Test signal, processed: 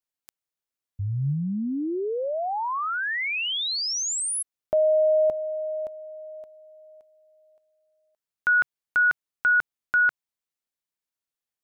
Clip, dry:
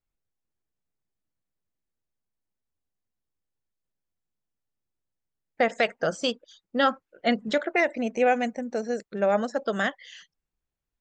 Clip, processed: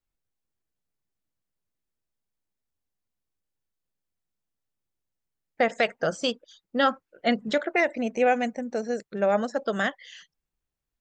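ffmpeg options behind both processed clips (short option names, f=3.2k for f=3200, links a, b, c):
-af "adynamicequalizer=threshold=0.00224:dfrequency=140:dqfactor=6.1:tfrequency=140:tqfactor=6.1:attack=5:release=100:ratio=0.375:range=2:mode=boostabove:tftype=bell"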